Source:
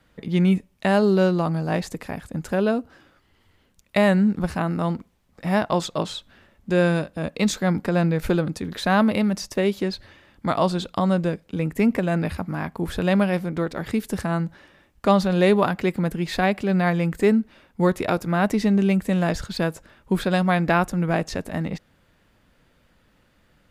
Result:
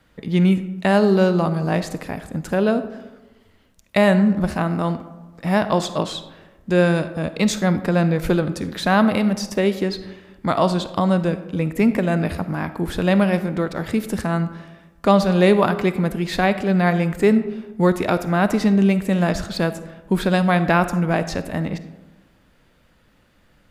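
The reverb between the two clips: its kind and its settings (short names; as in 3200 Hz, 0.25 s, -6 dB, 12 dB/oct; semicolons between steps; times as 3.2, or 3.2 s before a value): digital reverb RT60 1.2 s, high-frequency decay 0.45×, pre-delay 10 ms, DRR 11.5 dB; gain +2.5 dB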